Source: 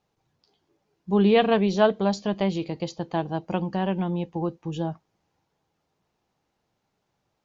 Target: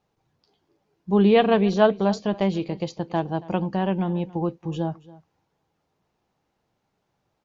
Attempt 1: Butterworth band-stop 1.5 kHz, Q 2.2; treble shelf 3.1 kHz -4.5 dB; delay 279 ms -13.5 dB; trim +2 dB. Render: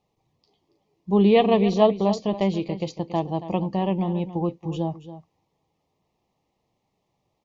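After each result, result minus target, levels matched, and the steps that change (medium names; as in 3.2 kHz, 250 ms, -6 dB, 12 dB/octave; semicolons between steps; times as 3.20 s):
2 kHz band -5.0 dB; echo-to-direct +7 dB
remove: Butterworth band-stop 1.5 kHz, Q 2.2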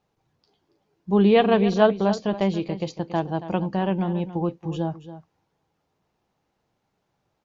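echo-to-direct +7 dB
change: delay 279 ms -20.5 dB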